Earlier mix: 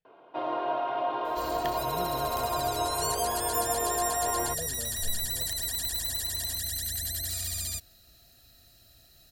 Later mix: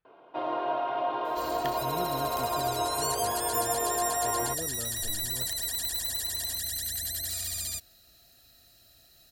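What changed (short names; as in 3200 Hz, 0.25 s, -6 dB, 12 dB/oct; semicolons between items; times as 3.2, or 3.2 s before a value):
speech: remove fixed phaser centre 310 Hz, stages 6; second sound: add low shelf 180 Hz -7 dB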